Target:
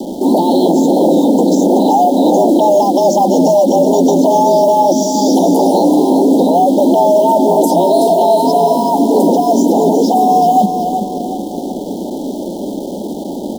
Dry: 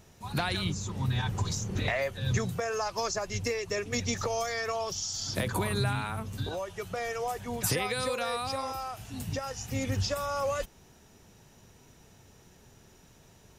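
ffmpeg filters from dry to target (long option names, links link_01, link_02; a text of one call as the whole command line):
ffmpeg -i in.wav -filter_complex "[0:a]asettb=1/sr,asplit=3[link_01][link_02][link_03];[link_01]atrim=end=1.684[link_04];[link_02]atrim=start=1.68:end=2.43,asetpts=PTS-STARTPTS,afade=type=in:duration=0.004:curve=qsin,afade=type=out:start_time=0.746:duration=0.004:curve=qsin,lowshelf=frequency=100:gain=-9[link_05];[link_03]atrim=start=2.426[link_06];[link_04][link_05]acrossfade=duration=0.004:curve1=hsin:curve2=qsin[link_07];[link_07][link_06]acrossfade=duration=0.004:curve1=qsin:curve2=hsin,acompressor=threshold=-33dB:ratio=10,acrossover=split=850|3100[link_08][link_09][link_10];[link_08]aeval=exprs='0.112*sin(PI/2*8.91*val(0)/0.112)':channel_layout=same[link_11];[link_11][link_09][link_10]amix=inputs=3:normalize=0,afreqshift=170,asplit=2[link_12][link_13];[link_13]acrusher=bits=5:mix=0:aa=0.000001,volume=-4dB[link_14];[link_12][link_14]amix=inputs=2:normalize=0,asuperstop=centerf=1700:order=20:qfactor=0.77,aecho=1:1:377|754|1131|1508|1885:0.398|0.171|0.0736|0.0317|0.0136,alimiter=level_in=9.5dB:limit=-1dB:release=50:level=0:latency=1,volume=-1dB" out.wav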